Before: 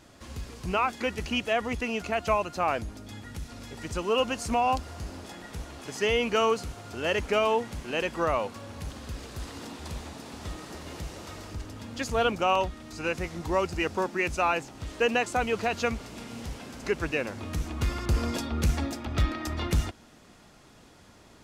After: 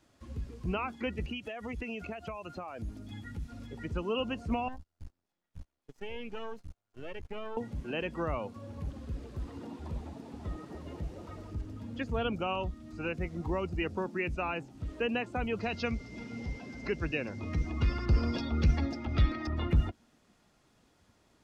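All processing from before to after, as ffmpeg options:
ffmpeg -i in.wav -filter_complex "[0:a]asettb=1/sr,asplit=3[link_01][link_02][link_03];[link_01]atrim=end=1.254[link_04];[link_02]atrim=start=1.25:end=3.67,asetpts=PTS-STARTPTS,afade=type=in:duration=0.004:curve=qsin,afade=type=out:start_time=2.416:duration=0.004:curve=qsin,highshelf=frequency=3800:gain=8.5,acompressor=threshold=-32dB:ratio=10:attack=3.2:release=140:knee=1:detection=peak[link_05];[link_03]atrim=start=3.666[link_06];[link_04][link_05]acrossfade=duration=0.004:curve1=hsin:curve2=qsin[link_07];[link_07][link_06]acrossfade=duration=0.004:curve1=qsin:curve2=hsin,asettb=1/sr,asplit=3[link_08][link_09][link_10];[link_08]atrim=end=4.684[link_11];[link_09]atrim=start=4.68:end=7.57,asetpts=PTS-STARTPTS,afade=type=in:duration=0.004:curve=qsin,afade=type=out:start_time=2.886:duration=0.004:curve=qsin,agate=range=-28dB:threshold=-37dB:ratio=16:release=100:detection=peak,acompressor=threshold=-39dB:ratio=2:attack=3.2:release=140:knee=1:detection=peak,aeval=exprs='max(val(0),0)':channel_layout=same[link_12];[link_10]atrim=start=7.566[link_13];[link_11][link_12]acrossfade=duration=0.004:curve1=hsin:curve2=qsin[link_14];[link_14][link_13]acrossfade=duration=0.004:curve1=qsin:curve2=hsin,asettb=1/sr,asplit=3[link_15][link_16][link_17];[link_15]atrim=end=15.604[link_18];[link_16]atrim=start=15.6:end=19.47,asetpts=PTS-STARTPTS,afade=type=in:duration=0.004:curve=qsin,afade=type=out:start_time=3.866:duration=0.004:curve=qsin,aeval=exprs='val(0)+0.00355*sin(2*PI*2100*n/s)':channel_layout=same,equalizer=frequency=5500:width_type=o:width=1:gain=14[link_19];[link_17]atrim=start=19.466[link_20];[link_18][link_19]acrossfade=duration=0.004:curve1=hsin:curve2=qsin[link_21];[link_21][link_20]acrossfade=duration=0.004:curve1=qsin:curve2=hsin,acrossover=split=3400[link_22][link_23];[link_23]acompressor=threshold=-53dB:ratio=4:attack=1:release=60[link_24];[link_22][link_24]amix=inputs=2:normalize=0,afftdn=noise_reduction=13:noise_floor=-38,acrossover=split=310|3000[link_25][link_26][link_27];[link_26]acompressor=threshold=-42dB:ratio=2[link_28];[link_25][link_28][link_27]amix=inputs=3:normalize=0" out.wav

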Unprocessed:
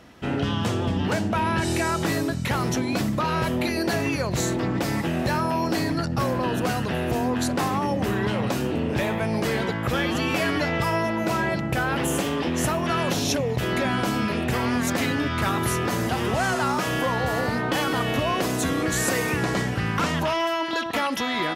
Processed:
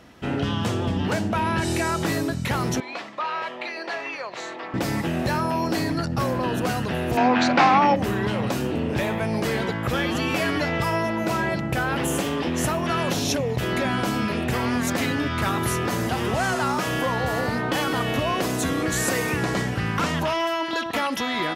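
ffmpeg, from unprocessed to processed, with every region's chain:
ffmpeg -i in.wav -filter_complex "[0:a]asettb=1/sr,asplit=3[link_01][link_02][link_03];[link_01]atrim=end=2.804[link_04];[link_02]atrim=start=2.8:end=4.74,asetpts=PTS-STARTPTS,afade=type=in:duration=0.004:curve=qsin,afade=type=out:start_time=1.936:duration=0.004:curve=qsin,highpass=740,lowpass=3200,bandreject=frequency=1500:width=15[link_05];[link_03]atrim=start=4.736[link_06];[link_04][link_05]acrossfade=duration=0.004:curve1=hsin:curve2=qsin[link_07];[link_07][link_06]acrossfade=duration=0.004:curve1=qsin:curve2=hsin,asettb=1/sr,asplit=3[link_08][link_09][link_10];[link_08]atrim=end=7.174[link_11];[link_09]atrim=start=7.17:end=7.96,asetpts=PTS-STARTPTS,afade=type=in:duration=0.004:curve=qsin,afade=type=out:start_time=0.786:duration=0.004:curve=qsin,acontrast=68,highpass=220,equalizer=frequency=410:width_type=q:width=4:gain=-8,equalizer=frequency=780:width_type=q:width=4:gain=6,equalizer=frequency=1400:width_type=q:width=4:gain=5,equalizer=frequency=2300:width_type=q:width=4:gain=9,lowpass=frequency=5100:width=0.5412,lowpass=frequency=5100:width=1.3066[link_12];[link_10]atrim=start=7.956[link_13];[link_11][link_12]acrossfade=duration=0.004:curve1=hsin:curve2=qsin[link_14];[link_14][link_13]acrossfade=duration=0.004:curve1=qsin:curve2=hsin" out.wav

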